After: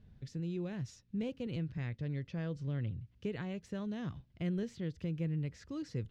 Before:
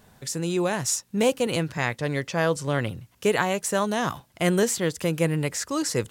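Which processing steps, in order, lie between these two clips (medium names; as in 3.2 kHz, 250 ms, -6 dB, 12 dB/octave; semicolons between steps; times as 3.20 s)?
amplifier tone stack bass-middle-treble 10-0-1; compression 1.5:1, threshold -51 dBFS, peak gain reduction 5.5 dB; distance through air 250 m; trim +10.5 dB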